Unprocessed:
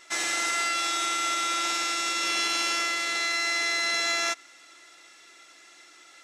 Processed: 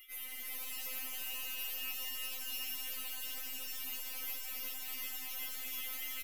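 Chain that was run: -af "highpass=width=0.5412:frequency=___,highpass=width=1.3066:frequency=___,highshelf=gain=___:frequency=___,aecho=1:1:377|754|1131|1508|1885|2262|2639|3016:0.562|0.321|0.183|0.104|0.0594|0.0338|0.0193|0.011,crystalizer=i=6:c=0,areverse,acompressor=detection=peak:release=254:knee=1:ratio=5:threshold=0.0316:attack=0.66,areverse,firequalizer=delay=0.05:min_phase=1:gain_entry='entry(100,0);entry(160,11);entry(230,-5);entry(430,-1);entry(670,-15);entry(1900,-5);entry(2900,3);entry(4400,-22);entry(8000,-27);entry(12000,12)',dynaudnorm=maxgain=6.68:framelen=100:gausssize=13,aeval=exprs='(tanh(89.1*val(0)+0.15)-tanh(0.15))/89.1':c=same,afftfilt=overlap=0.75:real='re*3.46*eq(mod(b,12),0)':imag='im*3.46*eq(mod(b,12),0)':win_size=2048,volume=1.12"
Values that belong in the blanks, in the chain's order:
1100, 1100, 4.5, 11000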